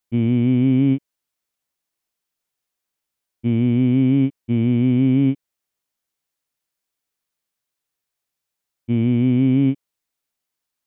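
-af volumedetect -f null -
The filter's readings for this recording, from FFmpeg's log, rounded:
mean_volume: -21.4 dB
max_volume: -8.6 dB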